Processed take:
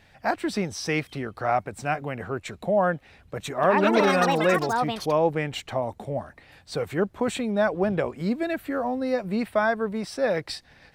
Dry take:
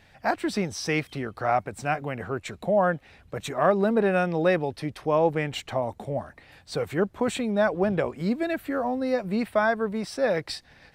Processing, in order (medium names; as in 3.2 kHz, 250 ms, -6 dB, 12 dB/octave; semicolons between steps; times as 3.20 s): 3.48–5.72 s: ever faster or slower copies 150 ms, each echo +7 st, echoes 3